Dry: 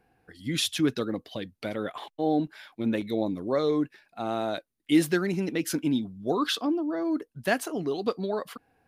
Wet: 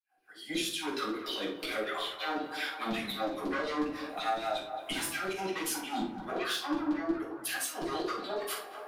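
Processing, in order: opening faded in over 1.50 s; soft clip -26 dBFS, distortion -9 dB; rotary speaker horn 6.7 Hz, later 1 Hz, at 4.08; LFO high-pass saw down 5.5 Hz 350–4200 Hz; limiter -29.5 dBFS, peak gain reduction 10.5 dB; high shelf 5600 Hz +10 dB; narrowing echo 0.222 s, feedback 70%, band-pass 860 Hz, level -14.5 dB; compressor 6:1, threshold -45 dBFS, peak gain reduction 14.5 dB; shoebox room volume 540 m³, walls furnished, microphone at 8.2 m; 5.33–7.81 three-band expander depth 40%; gain +3 dB

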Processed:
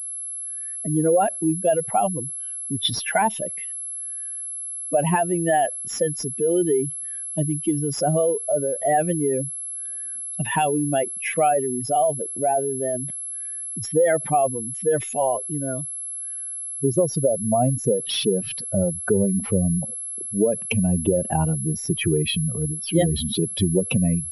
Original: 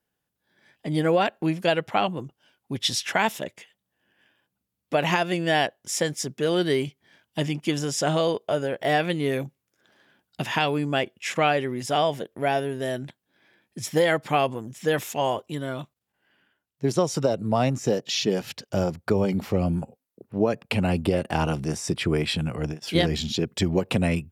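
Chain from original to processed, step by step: spectral contrast raised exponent 2.3; pulse-width modulation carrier 11000 Hz; gain +3 dB

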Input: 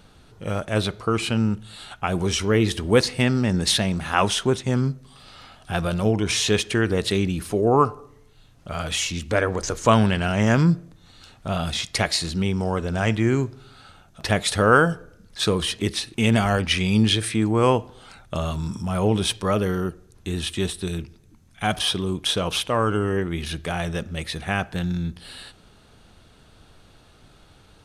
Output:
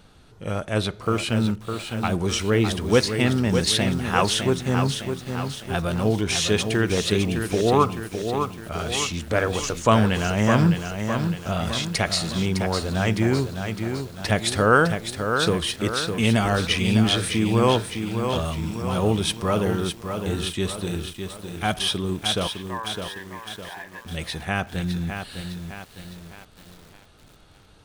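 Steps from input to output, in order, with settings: 22.47–24.05 double band-pass 1300 Hz, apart 0.8 oct; lo-fi delay 0.608 s, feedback 55%, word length 7-bit, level -6.5 dB; gain -1 dB

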